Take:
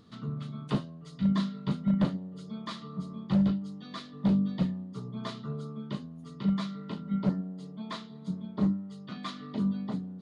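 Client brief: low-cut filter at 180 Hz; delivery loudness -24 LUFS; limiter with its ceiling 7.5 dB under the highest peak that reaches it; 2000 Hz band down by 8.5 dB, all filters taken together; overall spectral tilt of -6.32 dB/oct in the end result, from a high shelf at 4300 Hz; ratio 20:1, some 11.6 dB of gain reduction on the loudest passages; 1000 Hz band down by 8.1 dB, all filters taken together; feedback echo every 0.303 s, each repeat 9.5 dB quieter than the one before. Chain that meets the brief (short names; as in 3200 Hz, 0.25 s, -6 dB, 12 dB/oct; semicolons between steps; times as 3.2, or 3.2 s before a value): HPF 180 Hz; bell 1000 Hz -7.5 dB; bell 2000 Hz -7 dB; high shelf 4300 Hz -6 dB; compressor 20:1, threshold -35 dBFS; limiter -34 dBFS; feedback echo 0.303 s, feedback 33%, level -9.5 dB; gain +19.5 dB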